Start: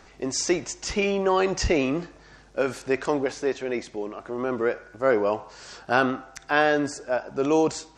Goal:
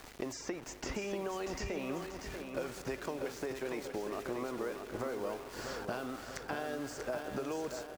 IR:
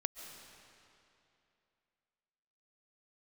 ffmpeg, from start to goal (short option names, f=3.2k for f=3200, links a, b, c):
-filter_complex "[0:a]acompressor=threshold=-34dB:ratio=6,aeval=exprs='val(0)*gte(abs(val(0)),0.00447)':c=same,acrossover=split=580|2600[a][b][c];[a]acompressor=threshold=-44dB:ratio=4[d];[b]acompressor=threshold=-47dB:ratio=4[e];[c]acompressor=threshold=-50dB:ratio=4[f];[d][e][f]amix=inputs=3:normalize=0,aecho=1:1:639|1278|1917|2556|3195|3834:0.473|0.227|0.109|0.0523|0.0251|0.0121,asplit=2[g][h];[1:a]atrim=start_sample=2205,asetrate=30870,aresample=44100,lowpass=2k[i];[h][i]afir=irnorm=-1:irlink=0,volume=-9dB[j];[g][j]amix=inputs=2:normalize=0,volume=2dB"